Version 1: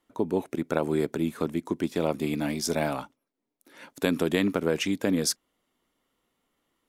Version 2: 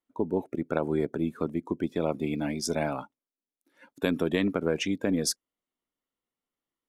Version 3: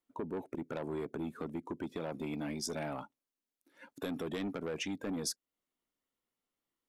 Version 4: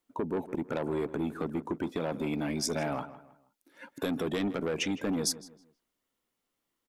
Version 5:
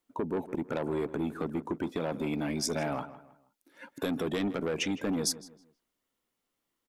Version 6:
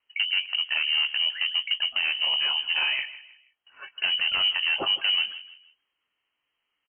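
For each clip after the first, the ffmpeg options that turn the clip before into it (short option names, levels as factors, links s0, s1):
-af "aeval=exprs='0.447*(cos(1*acos(clip(val(0)/0.447,-1,1)))-cos(1*PI/2))+0.0141*(cos(4*acos(clip(val(0)/0.447,-1,1)))-cos(4*PI/2))':c=same,afftdn=nr=15:nf=-40,volume=0.841"
-filter_complex "[0:a]acrossover=split=3500[s0][s1];[s0]asoftclip=type=tanh:threshold=0.0501[s2];[s2][s1]amix=inputs=2:normalize=0,acompressor=threshold=0.01:ratio=2"
-filter_complex "[0:a]asplit=2[s0][s1];[s1]adelay=159,lowpass=f=2700:p=1,volume=0.188,asplit=2[s2][s3];[s3]adelay=159,lowpass=f=2700:p=1,volume=0.35,asplit=2[s4][s5];[s5]adelay=159,lowpass=f=2700:p=1,volume=0.35[s6];[s0][s2][s4][s6]amix=inputs=4:normalize=0,volume=2.11"
-af anull
-filter_complex "[0:a]lowpass=f=2700:t=q:w=0.5098,lowpass=f=2700:t=q:w=0.6013,lowpass=f=2700:t=q:w=0.9,lowpass=f=2700:t=q:w=2.563,afreqshift=-3200,asplit=2[s0][s1];[s1]adelay=21,volume=0.251[s2];[s0][s2]amix=inputs=2:normalize=0,volume=2"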